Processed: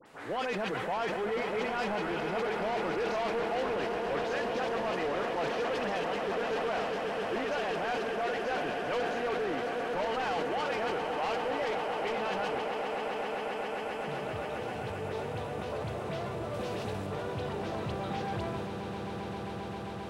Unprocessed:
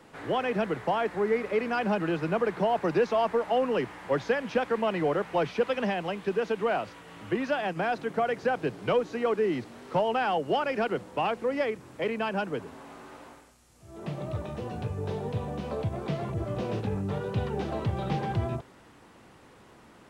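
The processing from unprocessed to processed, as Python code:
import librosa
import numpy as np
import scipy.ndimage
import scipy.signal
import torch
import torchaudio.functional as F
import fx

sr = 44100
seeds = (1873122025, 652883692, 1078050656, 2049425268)

y = fx.low_shelf(x, sr, hz=290.0, db=-10.0)
y = fx.echo_swell(y, sr, ms=133, loudest=8, wet_db=-12.5)
y = 10.0 ** (-28.5 / 20.0) * np.tanh(y / 10.0 ** (-28.5 / 20.0))
y = fx.high_shelf(y, sr, hz=4400.0, db=6.0, at=(16.48, 17.01))
y = fx.dispersion(y, sr, late='highs', ms=60.0, hz=1900.0)
y = fx.sustainer(y, sr, db_per_s=25.0)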